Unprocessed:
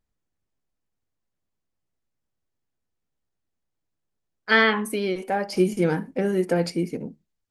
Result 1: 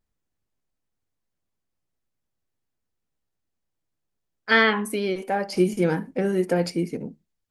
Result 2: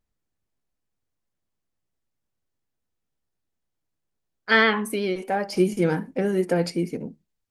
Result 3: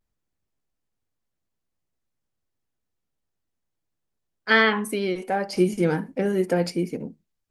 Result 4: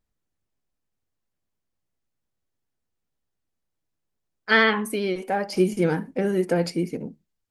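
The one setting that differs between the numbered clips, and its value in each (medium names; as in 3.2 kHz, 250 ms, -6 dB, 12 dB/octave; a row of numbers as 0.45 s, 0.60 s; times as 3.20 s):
vibrato, rate: 1.4 Hz, 8 Hz, 0.33 Hz, 15 Hz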